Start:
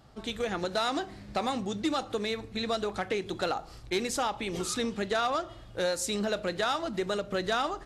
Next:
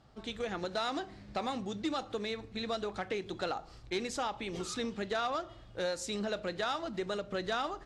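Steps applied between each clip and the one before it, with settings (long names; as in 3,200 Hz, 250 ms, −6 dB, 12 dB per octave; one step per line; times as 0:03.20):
low-pass filter 7,100 Hz 12 dB per octave
level −5 dB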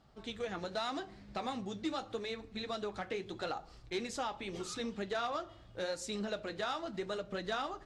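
flanger 0.81 Hz, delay 3.9 ms, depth 9.1 ms, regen −49%
level +1 dB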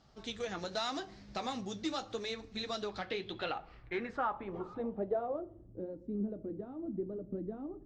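low-pass filter sweep 6,100 Hz → 300 Hz, 0:02.72–0:05.83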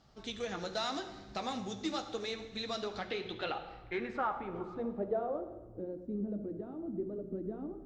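convolution reverb RT60 1.2 s, pre-delay 46 ms, DRR 10 dB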